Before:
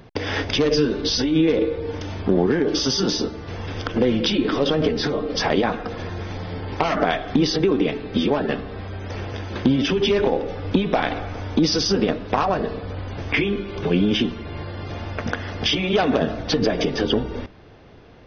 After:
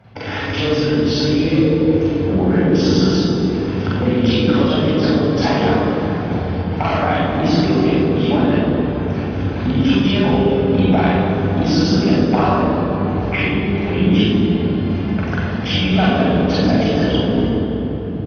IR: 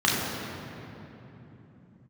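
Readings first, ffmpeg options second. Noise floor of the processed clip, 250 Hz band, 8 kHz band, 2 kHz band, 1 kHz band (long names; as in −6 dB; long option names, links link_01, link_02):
−23 dBFS, +7.5 dB, can't be measured, +3.5 dB, +5.0 dB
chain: -filter_complex "[0:a]asplit=2[link_01][link_02];[link_02]adelay=48,volume=-6dB[link_03];[link_01][link_03]amix=inputs=2:normalize=0[link_04];[1:a]atrim=start_sample=2205,asetrate=32193,aresample=44100[link_05];[link_04][link_05]afir=irnorm=-1:irlink=0,volume=-16.5dB"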